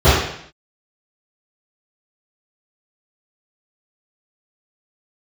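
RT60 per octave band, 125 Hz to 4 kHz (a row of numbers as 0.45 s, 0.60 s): 0.65 s, 0.70 s, 0.65 s, 0.65 s, 0.70 s, 0.70 s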